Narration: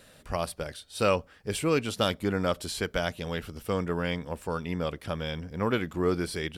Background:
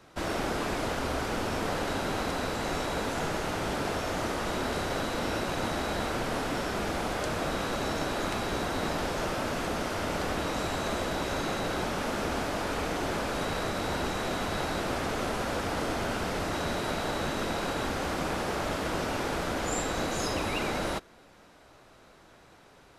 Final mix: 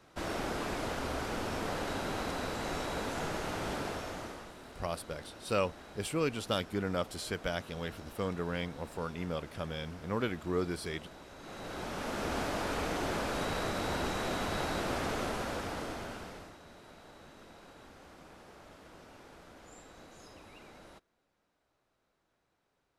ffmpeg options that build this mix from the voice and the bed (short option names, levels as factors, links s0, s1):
-filter_complex "[0:a]adelay=4500,volume=0.501[s0];[1:a]volume=3.98,afade=t=out:st=3.73:d=0.81:silence=0.177828,afade=t=in:st=11.38:d=1.03:silence=0.141254,afade=t=out:st=15.1:d=1.47:silence=0.1[s1];[s0][s1]amix=inputs=2:normalize=0"